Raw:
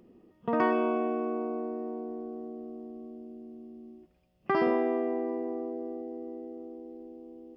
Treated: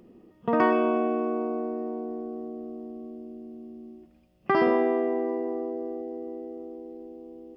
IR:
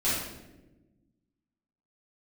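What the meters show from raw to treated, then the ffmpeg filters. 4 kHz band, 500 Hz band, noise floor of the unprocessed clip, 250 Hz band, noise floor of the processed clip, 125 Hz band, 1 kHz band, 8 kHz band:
+4.5 dB, +4.0 dB, -66 dBFS, +3.5 dB, -59 dBFS, +4.0 dB, +4.0 dB, n/a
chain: -filter_complex "[0:a]asplit=2[a][b];[1:a]atrim=start_sample=2205,asetrate=40572,aresample=44100[c];[b][c]afir=irnorm=-1:irlink=0,volume=-28.5dB[d];[a][d]amix=inputs=2:normalize=0,volume=4dB"

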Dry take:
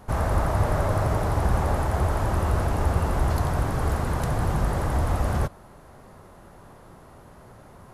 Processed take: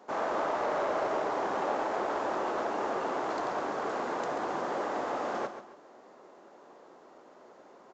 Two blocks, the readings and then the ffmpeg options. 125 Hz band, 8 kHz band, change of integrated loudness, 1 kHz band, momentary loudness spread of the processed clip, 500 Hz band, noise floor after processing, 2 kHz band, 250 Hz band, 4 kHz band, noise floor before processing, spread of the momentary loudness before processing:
-31.5 dB, -11.5 dB, -7.0 dB, -2.0 dB, 3 LU, -1.5 dB, -56 dBFS, -3.0 dB, -8.0 dB, -4.5 dB, -49 dBFS, 2 LU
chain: -filter_complex "[0:a]highpass=f=300:w=0.5412,highpass=f=300:w=1.3066,asplit=2[a][b];[b]adynamicsmooth=sensitivity=5.5:basefreq=750,volume=-2.5dB[c];[a][c]amix=inputs=2:normalize=0,asoftclip=type=tanh:threshold=-14.5dB,aecho=1:1:136|272|408|544:0.299|0.0985|0.0325|0.0107,aresample=16000,aresample=44100,volume=-6dB"

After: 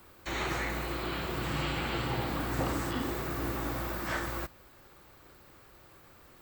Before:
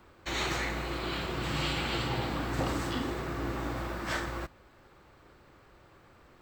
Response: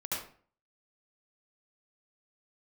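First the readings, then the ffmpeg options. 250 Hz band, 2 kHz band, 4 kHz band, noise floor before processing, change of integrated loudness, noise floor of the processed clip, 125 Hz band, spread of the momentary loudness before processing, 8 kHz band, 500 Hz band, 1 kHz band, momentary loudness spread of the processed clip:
-0.5 dB, -0.5 dB, -3.5 dB, -59 dBFS, -0.5 dB, -57 dBFS, -0.5 dB, 5 LU, -1.0 dB, -0.5 dB, 0.0 dB, 3 LU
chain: -filter_complex "[0:a]acrossover=split=2500[a][b];[b]acompressor=threshold=-50dB:ratio=4:attack=1:release=60[c];[a][c]amix=inputs=2:normalize=0,aemphasis=mode=production:type=50fm"

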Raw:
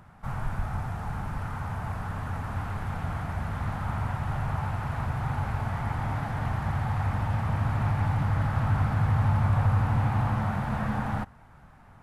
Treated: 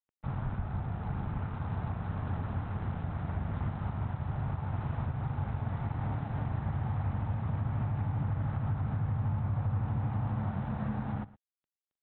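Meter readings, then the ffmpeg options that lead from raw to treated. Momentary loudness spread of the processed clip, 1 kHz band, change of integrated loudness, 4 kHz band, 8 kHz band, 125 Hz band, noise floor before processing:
4 LU, -9.5 dB, -5.5 dB, under -10 dB, n/a, -5.0 dB, -52 dBFS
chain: -af "aresample=8000,aeval=exprs='sgn(val(0))*max(abs(val(0))-0.0075,0)':c=same,aresample=44100,highpass=f=78:p=1,tiltshelf=f=720:g=6.5,aecho=1:1:115:0.0891,alimiter=limit=-22dB:level=0:latency=1:release=378,volume=-2dB"

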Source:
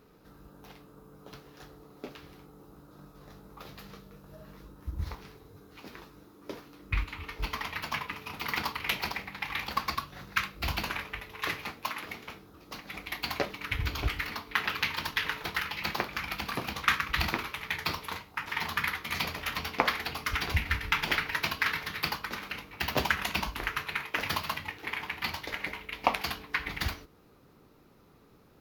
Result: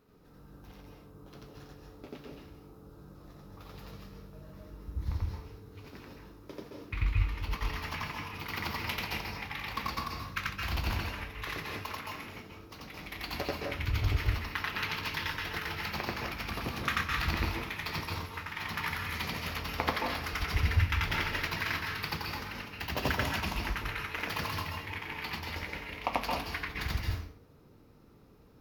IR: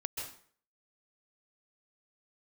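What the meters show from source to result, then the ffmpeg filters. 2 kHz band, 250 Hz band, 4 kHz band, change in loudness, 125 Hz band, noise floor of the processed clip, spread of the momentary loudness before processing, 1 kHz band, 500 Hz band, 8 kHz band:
-3.5 dB, +1.0 dB, -3.5 dB, -2.0 dB, +5.0 dB, -57 dBFS, 21 LU, -2.5 dB, -1.0 dB, -3.0 dB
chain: -filter_complex "[0:a]asplit=2[a][b];[b]equalizer=f=5.4k:w=6.3:g=5[c];[1:a]atrim=start_sample=2205,lowshelf=f=420:g=9.5,adelay=88[d];[c][d]afir=irnorm=-1:irlink=0,volume=0.5dB[e];[a][e]amix=inputs=2:normalize=0,volume=-7.5dB"

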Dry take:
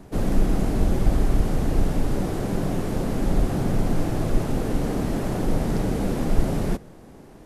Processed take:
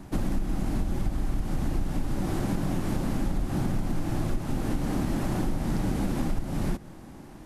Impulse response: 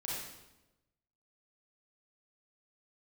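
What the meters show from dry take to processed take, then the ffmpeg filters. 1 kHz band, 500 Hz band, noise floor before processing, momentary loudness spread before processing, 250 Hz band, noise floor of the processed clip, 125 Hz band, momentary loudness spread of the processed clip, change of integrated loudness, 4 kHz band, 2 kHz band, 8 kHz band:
-4.5 dB, -8.5 dB, -45 dBFS, 3 LU, -4.0 dB, -45 dBFS, -4.5 dB, 3 LU, -5.0 dB, -4.0 dB, -4.0 dB, -4.0 dB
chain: -af "superequalizer=7b=0.398:8b=0.631,acompressor=threshold=-24dB:ratio=10,volume=1.5dB"

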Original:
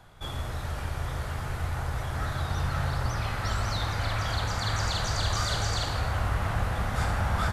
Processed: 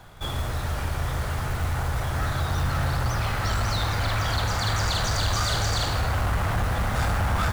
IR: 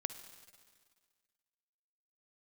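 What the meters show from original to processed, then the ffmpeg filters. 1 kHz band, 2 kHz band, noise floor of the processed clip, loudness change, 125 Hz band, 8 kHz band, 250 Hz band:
+4.0 dB, +4.0 dB, -29 dBFS, +4.0 dB, +4.0 dB, +4.5 dB, +4.0 dB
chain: -af "acrusher=bits=4:mode=log:mix=0:aa=0.000001,asoftclip=type=tanh:threshold=-24dB,volume=6dB"

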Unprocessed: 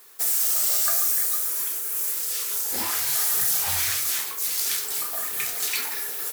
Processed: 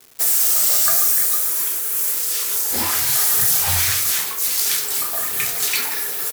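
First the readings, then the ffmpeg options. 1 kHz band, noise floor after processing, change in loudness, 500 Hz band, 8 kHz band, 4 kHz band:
+6.0 dB, -26 dBFS, +6.0 dB, +6.5 dB, +6.0 dB, +6.0 dB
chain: -filter_complex "[0:a]adynamicequalizer=threshold=0.00141:dfrequency=100:dqfactor=0.73:tfrequency=100:tqfactor=0.73:attack=5:release=100:ratio=0.375:range=3.5:mode=boostabove:tftype=bell,aecho=1:1:163:0.0708,acrossover=split=400[a][b];[b]acrusher=bits=6:mix=0:aa=0.000001[c];[a][c]amix=inputs=2:normalize=0,volume=6dB"

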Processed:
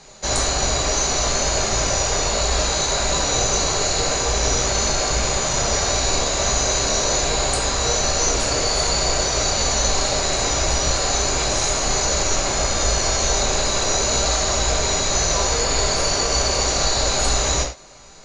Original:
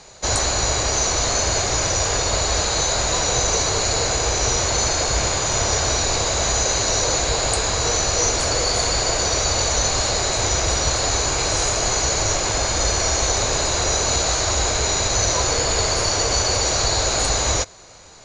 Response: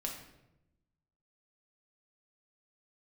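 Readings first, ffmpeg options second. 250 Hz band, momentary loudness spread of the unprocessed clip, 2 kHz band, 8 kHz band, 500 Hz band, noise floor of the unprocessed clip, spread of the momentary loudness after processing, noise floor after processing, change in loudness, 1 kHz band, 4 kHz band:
+1.0 dB, 1 LU, -0.5 dB, -0.5 dB, +0.5 dB, -23 dBFS, 1 LU, -22 dBFS, 0.0 dB, 0.0 dB, 0.0 dB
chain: -filter_complex "[1:a]atrim=start_sample=2205,afade=t=out:st=0.16:d=0.01,atrim=end_sample=7497[a];[0:a][a]afir=irnorm=-1:irlink=0"

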